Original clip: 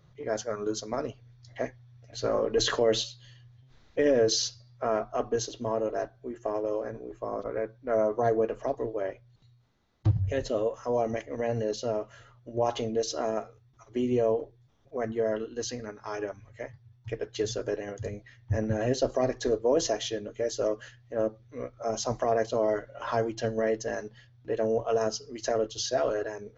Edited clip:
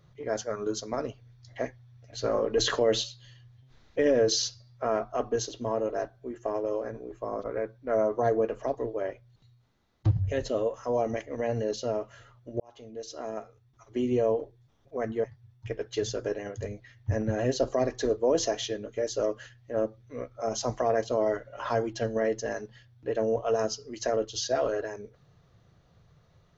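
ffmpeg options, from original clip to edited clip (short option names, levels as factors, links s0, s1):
-filter_complex "[0:a]asplit=3[s0][s1][s2];[s0]atrim=end=12.6,asetpts=PTS-STARTPTS,afade=t=out:st=12.596:d=0.004:c=hsin[s3];[s1]atrim=start=12.6:end=15.242,asetpts=PTS-STARTPTS,afade=t=in:d=1.41[s4];[s2]atrim=start=16.658[s5];[s3][s4]concat=n=2:v=0:a=1[s6];[s6][s5]acrossfade=d=0.004:c1=hsin:c2=hsin"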